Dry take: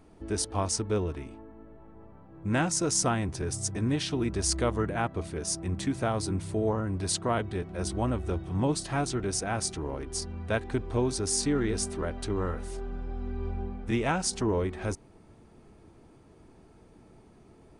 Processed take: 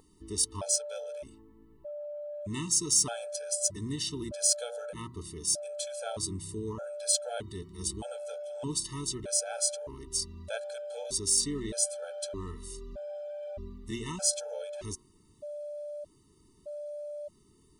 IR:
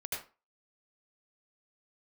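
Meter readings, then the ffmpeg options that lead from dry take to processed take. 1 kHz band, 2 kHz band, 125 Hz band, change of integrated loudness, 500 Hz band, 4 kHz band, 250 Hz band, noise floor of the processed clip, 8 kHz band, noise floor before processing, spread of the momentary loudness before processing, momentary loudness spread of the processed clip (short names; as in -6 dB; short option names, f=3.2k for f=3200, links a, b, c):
-11.5 dB, -11.0 dB, -11.0 dB, -2.0 dB, -4.5 dB, +1.0 dB, -10.0 dB, -63 dBFS, +4.0 dB, -56 dBFS, 9 LU, 16 LU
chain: -af "bandreject=f=119.8:t=h:w=4,bandreject=f=239.6:t=h:w=4,bandreject=f=359.4:t=h:w=4,bandreject=f=479.2:t=h:w=4,bandreject=f=599:t=h:w=4,bandreject=f=718.8:t=h:w=4,bandreject=f=838.6:t=h:w=4,bandreject=f=958.4:t=h:w=4,bandreject=f=1.0782k:t=h:w=4,bandreject=f=1.198k:t=h:w=4,bandreject=f=1.3178k:t=h:w=4,bandreject=f=1.4376k:t=h:w=4,bandreject=f=1.5574k:t=h:w=4,bandreject=f=1.6772k:t=h:w=4,aexciter=amount=3.5:drive=7.4:freq=3.1k,aeval=exprs='val(0)+0.0355*sin(2*PI*590*n/s)':c=same,afftfilt=real='re*gt(sin(2*PI*0.81*pts/sr)*(1-2*mod(floor(b*sr/1024/440),2)),0)':imag='im*gt(sin(2*PI*0.81*pts/sr)*(1-2*mod(floor(b*sr/1024/440),2)),0)':win_size=1024:overlap=0.75,volume=-7.5dB"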